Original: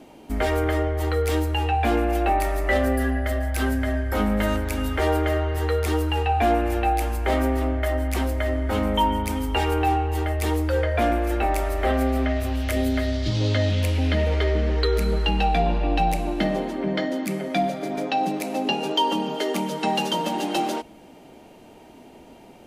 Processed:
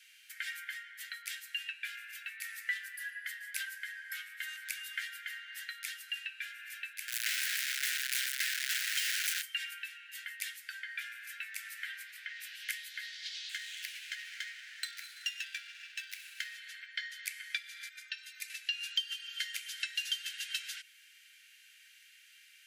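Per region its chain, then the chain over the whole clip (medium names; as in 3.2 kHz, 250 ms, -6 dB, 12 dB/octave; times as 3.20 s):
7.08–9.42 s: one-bit comparator + high-pass 1 kHz 24 dB/octave
13.49–16.55 s: treble shelf 8.3 kHz +11.5 dB + sliding maximum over 5 samples
17.89–18.50 s: resonant low shelf 620 Hz -12.5 dB, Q 3 + inharmonic resonator 76 Hz, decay 0.25 s, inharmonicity 0.03
whole clip: compression, threshold -27 dBFS; steep high-pass 1.5 kHz 96 dB/octave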